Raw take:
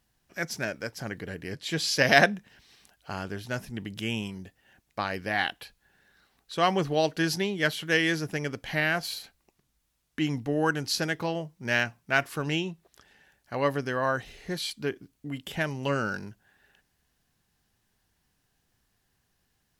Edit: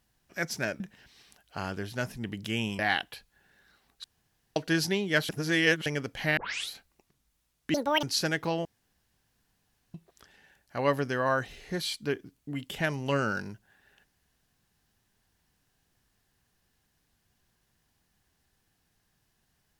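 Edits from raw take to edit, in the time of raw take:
0.80–2.33 s: delete
4.32–5.28 s: delete
6.53–7.05 s: room tone
7.78–8.35 s: reverse
8.86 s: tape start 0.33 s
10.23–10.80 s: speed 196%
11.42–12.71 s: room tone

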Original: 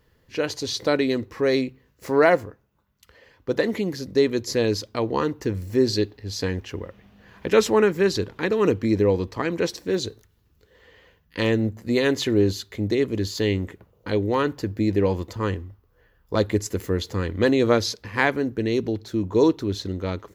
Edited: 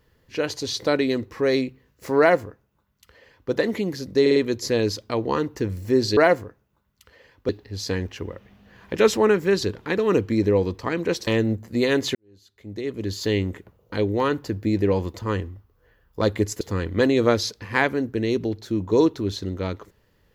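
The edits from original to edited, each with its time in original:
2.19–3.51 s: copy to 6.02 s
4.21 s: stutter 0.05 s, 4 plays
9.80–11.41 s: delete
12.29–13.36 s: fade in quadratic
16.75–17.04 s: delete

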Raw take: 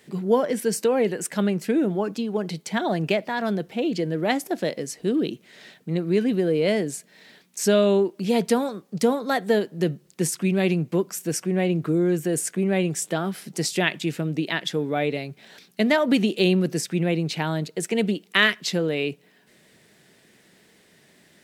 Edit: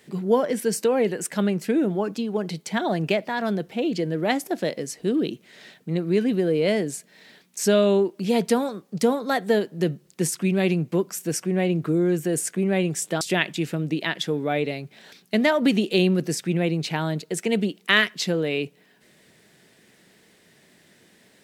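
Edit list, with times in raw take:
13.21–13.67 s: delete

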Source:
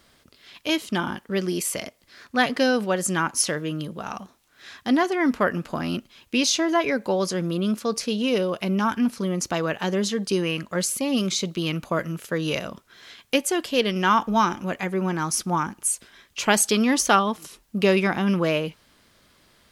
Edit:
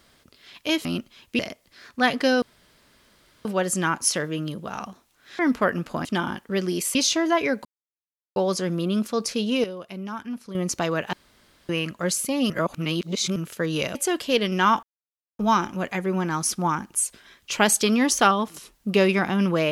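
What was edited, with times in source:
0.85–1.75 s: swap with 5.84–6.38 s
2.78 s: insert room tone 1.03 s
4.72–5.18 s: delete
7.08 s: insert silence 0.71 s
8.36–9.27 s: gain -10.5 dB
9.85–10.41 s: room tone
11.22–12.08 s: reverse
12.67–13.39 s: delete
14.27 s: insert silence 0.56 s

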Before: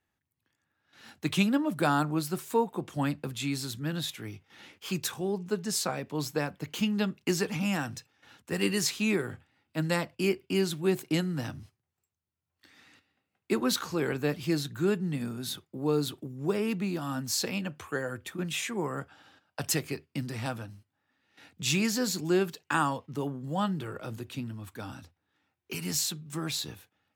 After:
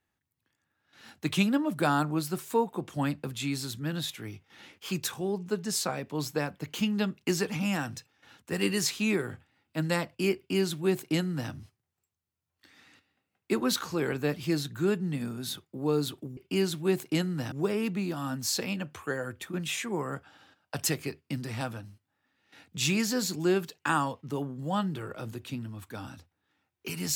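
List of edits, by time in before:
10.36–11.51 s: copy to 16.37 s

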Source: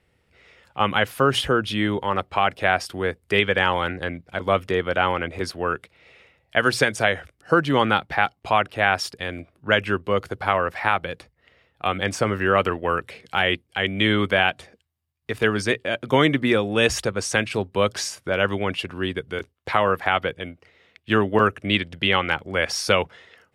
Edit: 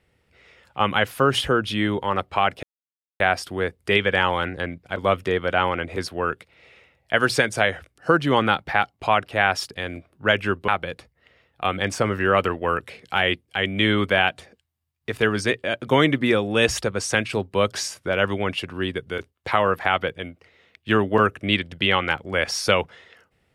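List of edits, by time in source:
2.63 s: insert silence 0.57 s
10.11–10.89 s: delete

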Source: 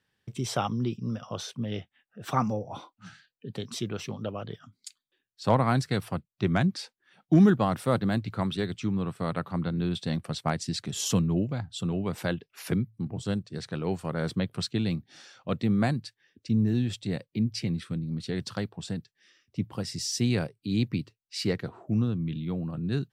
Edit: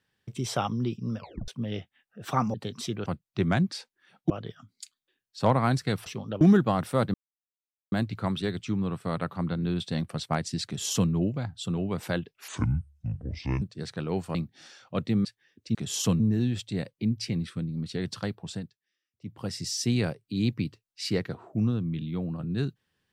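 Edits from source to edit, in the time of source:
1.18 s: tape stop 0.30 s
2.54–3.47 s: delete
3.99–4.34 s: swap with 6.10–7.34 s
8.07 s: insert silence 0.78 s
10.81–11.26 s: copy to 16.54 s
12.63–13.37 s: speed 65%
14.10–14.89 s: delete
15.79–16.04 s: delete
18.87–19.82 s: dip -22.5 dB, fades 0.45 s quadratic

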